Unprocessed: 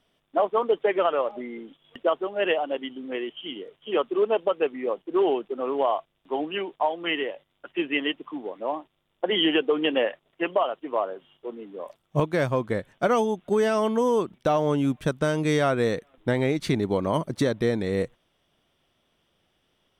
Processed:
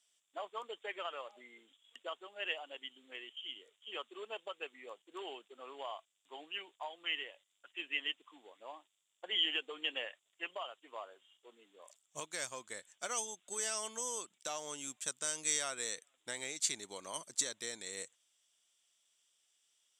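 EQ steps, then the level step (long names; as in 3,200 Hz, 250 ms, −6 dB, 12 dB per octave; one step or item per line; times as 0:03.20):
resonant band-pass 7,400 Hz, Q 6.3
+16.5 dB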